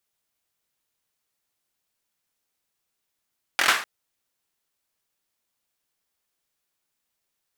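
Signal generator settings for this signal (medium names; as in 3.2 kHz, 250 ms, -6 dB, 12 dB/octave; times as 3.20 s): hand clap length 0.25 s, bursts 5, apart 23 ms, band 1.5 kHz, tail 0.41 s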